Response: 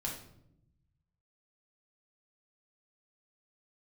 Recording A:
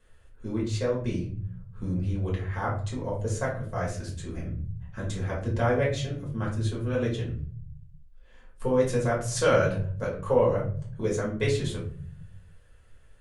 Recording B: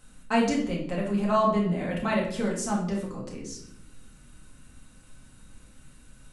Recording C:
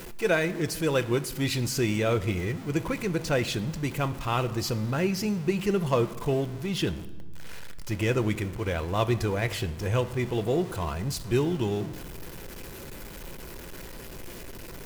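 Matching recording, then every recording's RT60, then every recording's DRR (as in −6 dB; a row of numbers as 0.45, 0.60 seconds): B; 0.50, 0.75, 1.6 seconds; −5.0, −3.0, 10.5 decibels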